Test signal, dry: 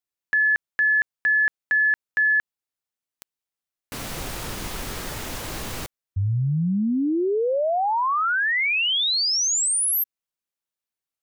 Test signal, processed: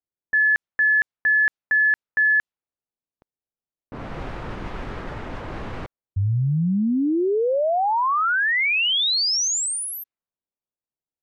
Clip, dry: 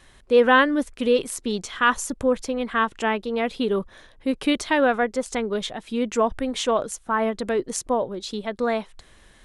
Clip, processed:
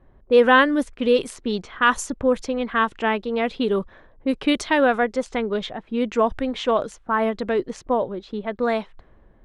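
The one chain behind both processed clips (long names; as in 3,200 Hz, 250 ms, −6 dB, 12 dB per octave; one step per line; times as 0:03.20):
low-pass that shuts in the quiet parts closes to 660 Hz, open at −17.5 dBFS
level +1.5 dB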